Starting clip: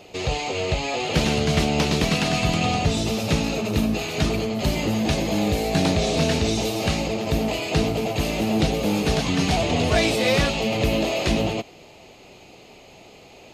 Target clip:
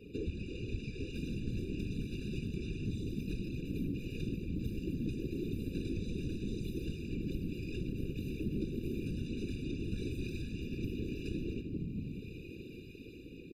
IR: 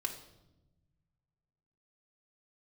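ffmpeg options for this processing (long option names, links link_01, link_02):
-filter_complex "[0:a]acrossover=split=1300[link_01][link_02];[link_02]dynaudnorm=framelen=110:gausssize=9:maxgain=7dB[link_03];[link_01][link_03]amix=inputs=2:normalize=0,highpass=frequency=72:width=0.5412,highpass=frequency=72:width=1.3066,equalizer=frequency=5900:width=0.82:gain=-12[link_04];[1:a]atrim=start_sample=2205[link_05];[link_04][link_05]afir=irnorm=-1:irlink=0,aeval=exprs='0.631*(cos(1*acos(clip(val(0)/0.631,-1,1)))-cos(1*PI/2))+0.126*(cos(6*acos(clip(val(0)/0.631,-1,1)))-cos(6*PI/2))':channel_layout=same,asuperstop=centerf=790:order=12:qfactor=0.54,acompressor=threshold=-39dB:ratio=5,afftfilt=real='hypot(re,im)*cos(2*PI*random(0))':imag='hypot(re,im)*sin(2*PI*random(1))':win_size=512:overlap=0.75,firequalizer=gain_entry='entry(980,0);entry(1500,-15);entry(4200,-12)':delay=0.05:min_phase=1,afftfilt=real='re*eq(mod(floor(b*sr/1024/580),2),0)':imag='im*eq(mod(floor(b*sr/1024/580),2),0)':win_size=1024:overlap=0.75,volume=10dB"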